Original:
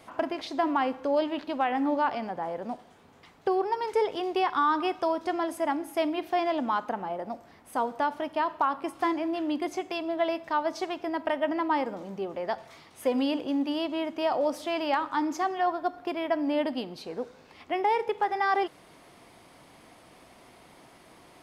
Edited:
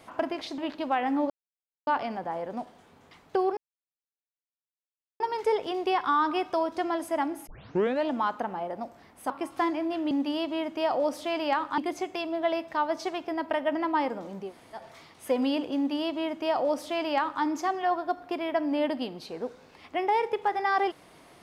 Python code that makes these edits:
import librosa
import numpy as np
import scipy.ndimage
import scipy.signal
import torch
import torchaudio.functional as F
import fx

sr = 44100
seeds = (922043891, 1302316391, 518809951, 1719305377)

y = fx.edit(x, sr, fx.cut(start_s=0.58, length_s=0.69),
    fx.insert_silence(at_s=1.99, length_s=0.57),
    fx.insert_silence(at_s=3.69, length_s=1.63),
    fx.tape_start(start_s=5.96, length_s=0.6),
    fx.cut(start_s=7.79, length_s=0.94),
    fx.room_tone_fill(start_s=12.23, length_s=0.32, crossfade_s=0.16),
    fx.duplicate(start_s=13.52, length_s=1.67, to_s=9.54), tone=tone)